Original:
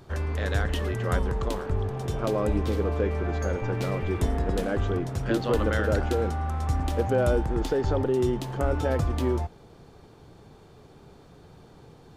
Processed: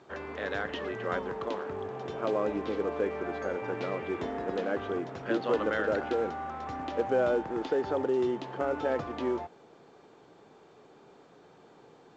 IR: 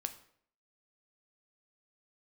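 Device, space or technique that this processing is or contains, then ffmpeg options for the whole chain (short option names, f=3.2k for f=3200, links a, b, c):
telephone: -af "highpass=290,lowpass=3.2k,volume=-1.5dB" -ar 16000 -c:a pcm_alaw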